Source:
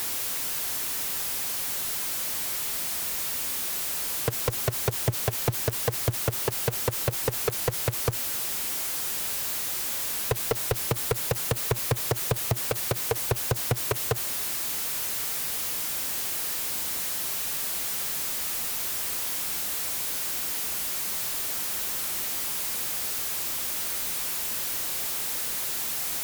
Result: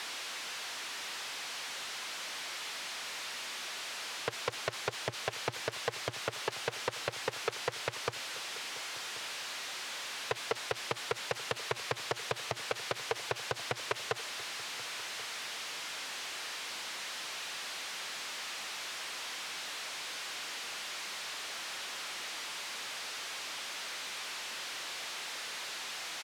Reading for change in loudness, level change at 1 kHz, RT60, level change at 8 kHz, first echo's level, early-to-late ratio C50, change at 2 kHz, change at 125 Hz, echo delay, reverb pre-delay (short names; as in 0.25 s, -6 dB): -11.0 dB, -3.0 dB, none, -12.5 dB, -18.0 dB, none, -1.0 dB, -18.5 dB, 1.084 s, none